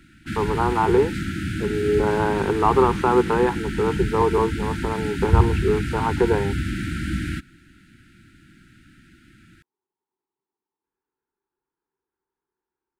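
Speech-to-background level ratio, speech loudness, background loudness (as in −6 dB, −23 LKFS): 4.0 dB, −22.5 LKFS, −26.5 LKFS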